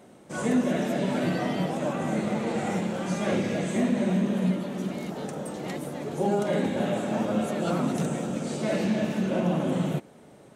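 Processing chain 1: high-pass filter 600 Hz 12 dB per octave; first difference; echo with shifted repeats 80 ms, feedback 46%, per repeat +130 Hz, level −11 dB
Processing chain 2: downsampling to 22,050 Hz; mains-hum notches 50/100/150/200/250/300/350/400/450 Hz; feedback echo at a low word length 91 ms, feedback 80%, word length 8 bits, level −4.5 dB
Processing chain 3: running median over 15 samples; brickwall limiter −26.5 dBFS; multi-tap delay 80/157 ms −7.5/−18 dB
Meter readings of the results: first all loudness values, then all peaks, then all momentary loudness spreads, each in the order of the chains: −45.0, −26.0, −33.5 LKFS; −21.5, −11.0, −23.0 dBFS; 7, 9, 3 LU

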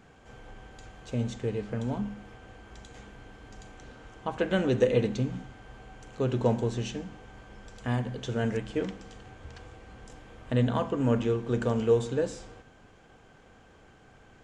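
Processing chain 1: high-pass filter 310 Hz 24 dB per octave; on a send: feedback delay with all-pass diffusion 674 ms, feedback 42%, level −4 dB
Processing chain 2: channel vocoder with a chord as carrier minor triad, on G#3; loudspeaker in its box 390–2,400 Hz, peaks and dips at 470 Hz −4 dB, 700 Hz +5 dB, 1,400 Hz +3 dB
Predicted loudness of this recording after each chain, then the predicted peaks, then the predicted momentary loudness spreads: −32.5, −35.5 LKFS; −11.0, −15.5 dBFS; 21, 15 LU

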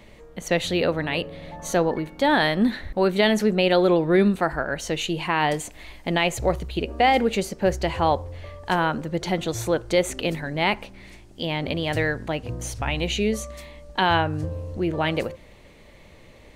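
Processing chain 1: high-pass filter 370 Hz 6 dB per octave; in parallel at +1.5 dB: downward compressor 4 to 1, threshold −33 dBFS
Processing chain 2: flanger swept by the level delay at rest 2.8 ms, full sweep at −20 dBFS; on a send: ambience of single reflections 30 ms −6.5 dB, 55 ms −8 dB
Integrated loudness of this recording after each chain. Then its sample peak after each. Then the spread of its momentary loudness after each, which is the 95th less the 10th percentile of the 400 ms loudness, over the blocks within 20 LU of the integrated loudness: −23.0, −24.0 LKFS; −5.0, −6.5 dBFS; 12, 12 LU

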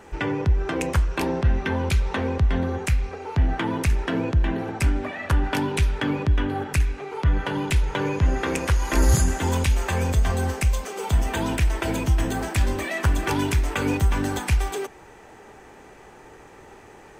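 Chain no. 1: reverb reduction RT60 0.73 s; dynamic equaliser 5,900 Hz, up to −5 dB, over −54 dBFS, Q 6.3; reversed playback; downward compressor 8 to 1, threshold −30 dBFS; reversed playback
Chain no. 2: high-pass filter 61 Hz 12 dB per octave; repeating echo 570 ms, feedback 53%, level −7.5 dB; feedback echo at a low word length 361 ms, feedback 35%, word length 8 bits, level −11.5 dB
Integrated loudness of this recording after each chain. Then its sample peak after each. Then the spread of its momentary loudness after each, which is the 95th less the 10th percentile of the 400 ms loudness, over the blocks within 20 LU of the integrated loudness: −35.5, −24.5 LKFS; −19.5, −8.5 dBFS; 14, 9 LU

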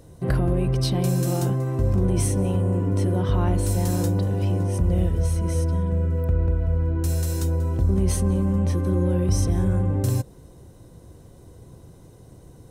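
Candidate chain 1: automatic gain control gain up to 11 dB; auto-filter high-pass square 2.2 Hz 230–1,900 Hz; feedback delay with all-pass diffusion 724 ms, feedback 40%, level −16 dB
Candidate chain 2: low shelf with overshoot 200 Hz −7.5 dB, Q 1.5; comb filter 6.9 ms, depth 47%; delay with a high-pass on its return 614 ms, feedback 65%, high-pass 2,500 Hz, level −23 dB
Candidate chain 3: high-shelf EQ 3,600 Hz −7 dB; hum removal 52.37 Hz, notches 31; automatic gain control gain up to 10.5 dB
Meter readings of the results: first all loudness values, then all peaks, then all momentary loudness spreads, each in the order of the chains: −18.5, −27.5, −14.5 LKFS; −1.5, −12.5, −2.5 dBFS; 18, 6, 2 LU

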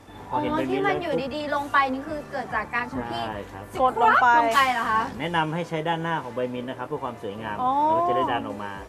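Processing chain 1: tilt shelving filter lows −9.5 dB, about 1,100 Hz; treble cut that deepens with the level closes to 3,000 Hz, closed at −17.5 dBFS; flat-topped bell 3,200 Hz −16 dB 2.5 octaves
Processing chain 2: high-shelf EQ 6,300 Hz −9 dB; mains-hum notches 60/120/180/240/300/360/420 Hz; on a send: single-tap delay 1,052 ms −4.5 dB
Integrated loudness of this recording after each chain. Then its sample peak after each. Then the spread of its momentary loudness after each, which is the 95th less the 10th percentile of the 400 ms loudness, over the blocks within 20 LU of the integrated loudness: −28.5, −23.5 LKFS; −10.5, −6.5 dBFS; 15, 11 LU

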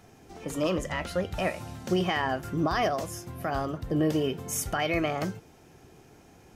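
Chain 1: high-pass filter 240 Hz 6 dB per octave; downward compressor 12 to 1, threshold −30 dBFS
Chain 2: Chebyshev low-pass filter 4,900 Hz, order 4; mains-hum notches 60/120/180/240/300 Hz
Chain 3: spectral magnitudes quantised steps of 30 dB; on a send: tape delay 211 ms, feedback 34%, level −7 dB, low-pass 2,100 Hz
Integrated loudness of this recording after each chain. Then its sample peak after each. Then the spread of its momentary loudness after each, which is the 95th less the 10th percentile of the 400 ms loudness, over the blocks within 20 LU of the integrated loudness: −36.0, −31.0, −29.5 LKFS; −19.0, −16.0, −14.5 dBFS; 6, 11, 9 LU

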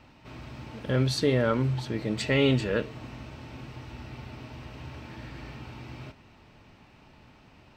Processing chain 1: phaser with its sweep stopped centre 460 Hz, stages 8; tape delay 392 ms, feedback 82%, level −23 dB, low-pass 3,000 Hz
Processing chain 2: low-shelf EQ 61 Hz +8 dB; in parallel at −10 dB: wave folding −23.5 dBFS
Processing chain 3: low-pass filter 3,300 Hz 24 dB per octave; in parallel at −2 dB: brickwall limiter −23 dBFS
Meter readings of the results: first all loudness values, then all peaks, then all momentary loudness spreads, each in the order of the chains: −30.0, −28.5, −27.5 LKFS; −16.5, −12.5, −10.5 dBFS; 20, 17, 16 LU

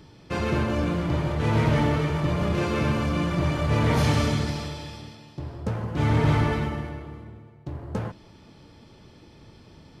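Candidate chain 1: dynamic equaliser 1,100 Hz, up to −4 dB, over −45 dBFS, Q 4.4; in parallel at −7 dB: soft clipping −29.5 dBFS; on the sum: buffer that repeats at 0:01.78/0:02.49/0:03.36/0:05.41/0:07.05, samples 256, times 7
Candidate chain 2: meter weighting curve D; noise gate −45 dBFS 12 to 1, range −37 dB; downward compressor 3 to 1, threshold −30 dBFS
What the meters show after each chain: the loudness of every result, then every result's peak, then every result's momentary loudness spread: −24.0, −31.5 LKFS; −11.5, −17.5 dBFS; 15, 11 LU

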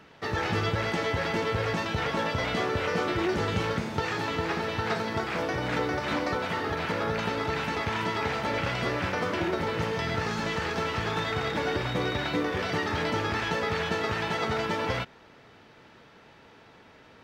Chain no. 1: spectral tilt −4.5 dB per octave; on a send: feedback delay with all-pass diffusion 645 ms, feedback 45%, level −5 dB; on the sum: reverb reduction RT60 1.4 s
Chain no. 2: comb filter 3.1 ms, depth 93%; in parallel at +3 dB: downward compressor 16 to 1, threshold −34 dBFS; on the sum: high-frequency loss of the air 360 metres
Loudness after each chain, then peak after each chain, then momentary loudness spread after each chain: −23.5, −25.5 LKFS; −4.0, −11.5 dBFS; 5, 2 LU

